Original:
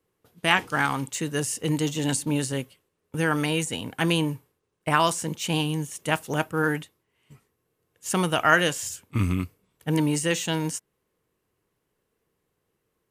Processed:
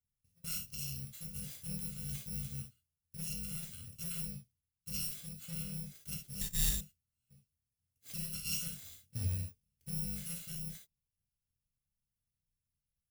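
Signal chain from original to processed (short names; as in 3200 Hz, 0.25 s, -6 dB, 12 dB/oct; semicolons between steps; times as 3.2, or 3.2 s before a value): FFT order left unsorted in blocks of 128 samples; non-linear reverb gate 90 ms flat, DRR 1.5 dB; 6.41–6.81 careless resampling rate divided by 6×, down none, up zero stuff; passive tone stack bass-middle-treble 10-0-1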